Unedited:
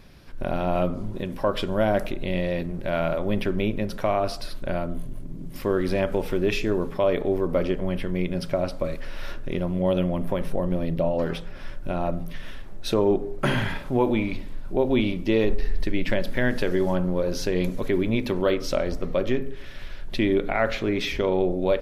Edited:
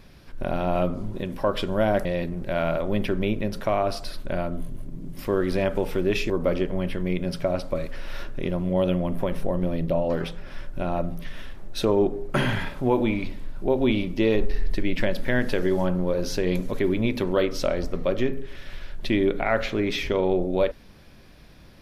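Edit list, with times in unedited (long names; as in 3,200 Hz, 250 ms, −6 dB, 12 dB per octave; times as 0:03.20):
0:02.05–0:02.42: remove
0:06.67–0:07.39: remove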